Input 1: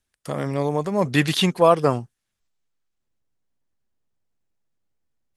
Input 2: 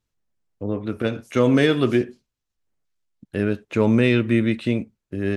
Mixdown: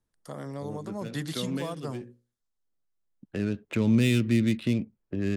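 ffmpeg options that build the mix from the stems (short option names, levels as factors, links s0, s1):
-filter_complex "[0:a]equalizer=f=2500:w=3.9:g=-14,bandreject=f=60:t=h:w=6,bandreject=f=120:t=h:w=6,bandreject=f=180:t=h:w=6,bandreject=f=240:t=h:w=6,bandreject=f=300:t=h:w=6,bandreject=f=360:t=h:w=6,bandreject=f=420:t=h:w=6,bandreject=f=480:t=h:w=6,bandreject=f=540:t=h:w=6,volume=0.335,asplit=2[s0][s1];[1:a]adynamicsmooth=sensitivity=5:basefreq=1700,volume=1.12[s2];[s1]apad=whole_len=236706[s3];[s2][s3]sidechaincompress=threshold=0.0126:ratio=5:attack=11:release=1460[s4];[s0][s4]amix=inputs=2:normalize=0,equalizer=f=72:w=1.2:g=-7,acrossover=split=240|3000[s5][s6][s7];[s6]acompressor=threshold=0.0158:ratio=4[s8];[s5][s8][s7]amix=inputs=3:normalize=0"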